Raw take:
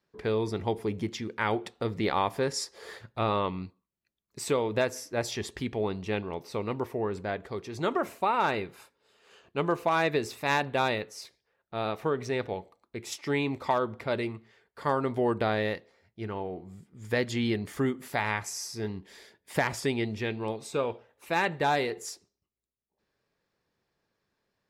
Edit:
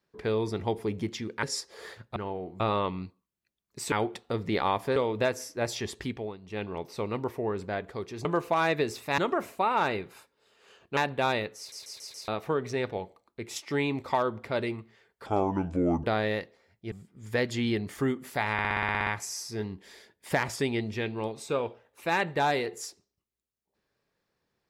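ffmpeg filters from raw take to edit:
-filter_complex "[0:a]asplit=28[a][b][c][d][e][f][g][h][i][j][k][l][m][n][o][p][q][r][s][t][u][v][w][x][y][z][aa][ab];[a]atrim=end=1.432[ac];[b]atrim=start=2.468:end=3.202[ad];[c]atrim=start=16.258:end=16.702[ae];[d]atrim=start=3.198:end=4.522[af];[e]atrim=start=1.428:end=2.472[ag];[f]atrim=start=4.518:end=5.93,asetpts=PTS-STARTPTS,afade=t=out:st=1.092:d=0.32:silence=0.199526[ah];[g]atrim=start=5.93:end=5.97,asetpts=PTS-STARTPTS,volume=-14dB[ai];[h]atrim=start=5.97:end=7.812,asetpts=PTS-STARTPTS,afade=t=in:d=0.32:silence=0.199526[aj];[i]atrim=start=9.598:end=10.532[ak];[j]atrim=start=7.808:end=9.602[al];[k]atrim=start=10.528:end=11.282[am];[l]atrim=start=11.138:end=11.282[an];[m]atrim=start=11.138:end=11.282[ao];[n]atrim=start=11.138:end=11.282[ap];[o]atrim=start=11.138:end=11.282[aq];[p]atrim=start=11.838:end=14.824[ar];[q]atrim=start=14.82:end=15.38,asetpts=PTS-STARTPTS,asetrate=31752,aresample=44100[as];[r]atrim=start=15.376:end=16.262[at];[s]atrim=start=16.698:end=18.372[au];[t]atrim=start=18.308:end=18.372[av];[u]atrim=start=18.308:end=18.372[aw];[v]atrim=start=18.308:end=18.372[ax];[w]atrim=start=18.308:end=18.372[ay];[x]atrim=start=18.308:end=18.372[az];[y]atrim=start=18.308:end=18.372[ba];[z]atrim=start=18.308:end=18.372[bb];[aa]atrim=start=18.308:end=18.372[bc];[ab]atrim=start=18.308[bd];[ac][ad]acrossfade=d=0.004:c1=hsin:c2=hsin[be];[be][ae]acrossfade=d=0.004:c1=hsin:c2=hsin[bf];[bf][af]acrossfade=d=0.004:c1=hsin:c2=hsin[bg];[bg][ag]acrossfade=d=0.004:c1=hsin:c2=hsin[bh];[ah][ai][aj]concat=n=3:v=0:a=1[bi];[bh][bi]acrossfade=d=0.004:c1=hsin:c2=hsin[bj];[bj][ak]acrossfade=d=0.004:c1=hsin:c2=hsin[bk];[bk][al]acrossfade=d=0.004:c1=hsin:c2=hsin[bl];[bl][am]acrossfade=d=0.004:c1=hsin:c2=hsin[bm];[bm][an]acrossfade=d=0.004:c1=hsin:c2=hsin[bn];[bn][ao]acrossfade=d=0.004:c1=hsin:c2=hsin[bo];[bo][ap]acrossfade=d=0.004:c1=hsin:c2=hsin[bp];[bp][aq]acrossfade=d=0.004:c1=hsin:c2=hsin[bq];[bq][ar]acrossfade=d=0.004:c1=hsin:c2=hsin[br];[br][as]acrossfade=d=0.004:c1=hsin:c2=hsin[bs];[bs][at]acrossfade=d=0.004:c1=hsin:c2=hsin[bt];[bt][au]acrossfade=d=0.004:c1=hsin:c2=hsin[bu];[bu][av]acrossfade=d=0.004:c1=hsin:c2=hsin[bv];[bv][aw]acrossfade=d=0.004:c1=hsin:c2=hsin[bw];[bw][ax]acrossfade=d=0.004:c1=hsin:c2=hsin[bx];[bx][ay]acrossfade=d=0.004:c1=hsin:c2=hsin[by];[by][az]acrossfade=d=0.004:c1=hsin:c2=hsin[bz];[bz][ba]acrossfade=d=0.004:c1=hsin:c2=hsin[ca];[ca][bb]acrossfade=d=0.004:c1=hsin:c2=hsin[cb];[cb][bc]acrossfade=d=0.004:c1=hsin:c2=hsin[cc];[cc][bd]acrossfade=d=0.004:c1=hsin:c2=hsin"

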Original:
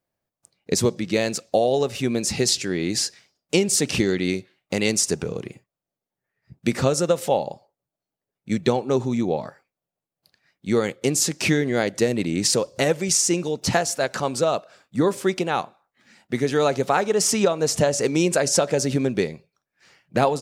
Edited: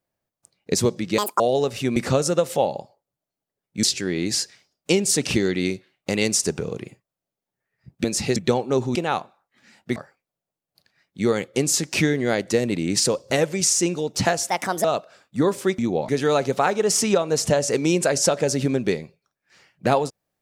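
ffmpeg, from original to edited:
-filter_complex "[0:a]asplit=13[a][b][c][d][e][f][g][h][i][j][k][l][m];[a]atrim=end=1.184[n];[b]atrim=start=1.18:end=1.59,asetpts=PTS-STARTPTS,asetrate=81585,aresample=44100[o];[c]atrim=start=1.586:end=2.152[p];[d]atrim=start=6.678:end=8.552[q];[e]atrim=start=2.468:end=6.682[r];[f]atrim=start=2.148:end=2.472[s];[g]atrim=start=8.548:end=9.142[t];[h]atrim=start=15.378:end=16.392[u];[i]atrim=start=9.438:end=13.974[v];[j]atrim=start=13.97:end=14.44,asetpts=PTS-STARTPTS,asetrate=58653,aresample=44100,atrim=end_sample=15584,asetpts=PTS-STARTPTS[w];[k]atrim=start=14.436:end=15.382[x];[l]atrim=start=9.138:end=9.442[y];[m]atrim=start=16.388[z];[n][o]acrossfade=d=0.004:c1=hsin:c2=hsin[aa];[aa][p]acrossfade=d=0.004:c1=hsin:c2=hsin[ab];[ab][q]acrossfade=d=0.004:c1=hsin:c2=hsin[ac];[ac][r]acrossfade=d=0.004:c1=hsin:c2=hsin[ad];[ad][s]acrossfade=d=0.004:c1=hsin:c2=hsin[ae];[ae][t]acrossfade=d=0.004:c1=hsin:c2=hsin[af];[af][u]acrossfade=d=0.004:c1=hsin:c2=hsin[ag];[ag][v]acrossfade=d=0.004:c1=hsin:c2=hsin[ah];[ah][w]acrossfade=d=0.004:c1=hsin:c2=hsin[ai];[ai][x]acrossfade=d=0.004:c1=hsin:c2=hsin[aj];[aj][y]acrossfade=d=0.004:c1=hsin:c2=hsin[ak];[ak][z]acrossfade=d=0.004:c1=hsin:c2=hsin"

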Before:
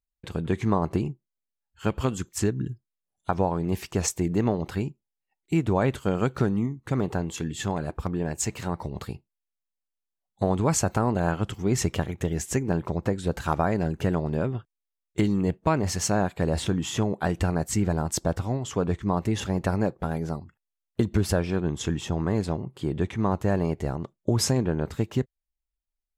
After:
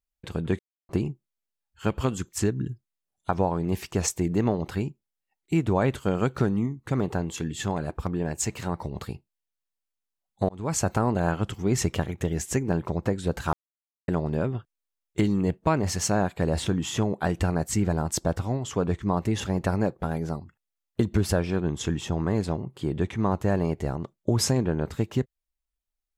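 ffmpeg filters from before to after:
-filter_complex "[0:a]asplit=6[a][b][c][d][e][f];[a]atrim=end=0.59,asetpts=PTS-STARTPTS,afade=t=out:st=0.586:d=0.004:c=hsin[g];[b]atrim=start=0.59:end=0.89,asetpts=PTS-STARTPTS,volume=0[h];[c]atrim=start=0.89:end=10.49,asetpts=PTS-STARTPTS,afade=t=in:d=0.004:c=hsin,afade=t=out:st=9.596:d=0.004:c=hsin[i];[d]atrim=start=10.49:end=13.53,asetpts=PTS-STARTPTS,afade=t=in:d=0.37,afade=t=out:st=3.036:d=0.004:c=hsin[j];[e]atrim=start=13.53:end=14.08,asetpts=PTS-STARTPTS,volume=0[k];[f]atrim=start=14.08,asetpts=PTS-STARTPTS,afade=t=in:d=0.004:c=hsin[l];[g][h][i][j][k][l]concat=n=6:v=0:a=1"

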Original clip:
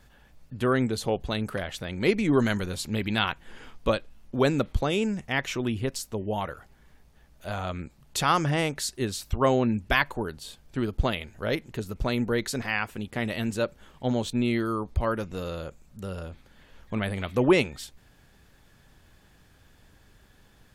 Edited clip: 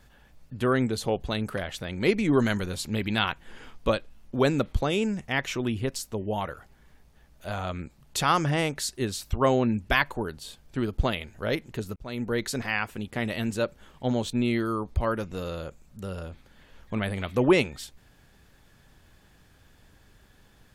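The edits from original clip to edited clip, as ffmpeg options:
-filter_complex "[0:a]asplit=2[a][b];[a]atrim=end=11.96,asetpts=PTS-STARTPTS,afade=t=out:st=11.956:d=0.004:c=hsin[c];[b]atrim=start=11.96,asetpts=PTS-STARTPTS,afade=t=in:d=0.6:c=qsin[d];[c][d]concat=n=2:v=0:a=1"

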